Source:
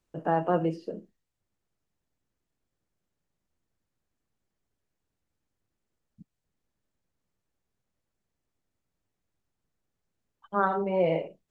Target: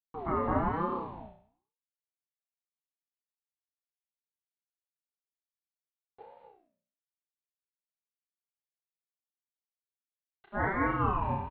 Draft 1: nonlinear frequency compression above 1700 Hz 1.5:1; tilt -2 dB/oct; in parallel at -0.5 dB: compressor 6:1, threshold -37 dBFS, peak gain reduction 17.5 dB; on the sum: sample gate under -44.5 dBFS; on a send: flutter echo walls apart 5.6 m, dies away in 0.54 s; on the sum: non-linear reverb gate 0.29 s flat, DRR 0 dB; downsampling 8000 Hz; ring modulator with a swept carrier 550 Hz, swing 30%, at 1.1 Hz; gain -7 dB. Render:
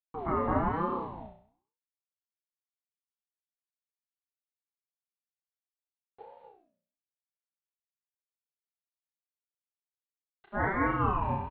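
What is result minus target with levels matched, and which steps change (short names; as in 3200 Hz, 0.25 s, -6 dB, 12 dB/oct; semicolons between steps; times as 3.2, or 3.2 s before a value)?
compressor: peak gain reduction -8.5 dB
change: compressor 6:1, threshold -47 dBFS, peak gain reduction 25.5 dB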